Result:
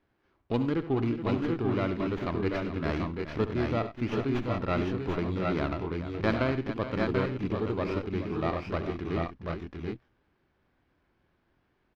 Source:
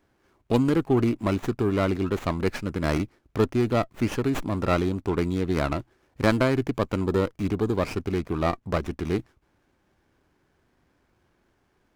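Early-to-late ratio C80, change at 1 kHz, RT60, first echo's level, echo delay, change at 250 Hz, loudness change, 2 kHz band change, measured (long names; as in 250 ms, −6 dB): no reverb audible, −4.0 dB, no reverb audible, −13.0 dB, 69 ms, −4.5 dB, −5.0 dB, −3.5 dB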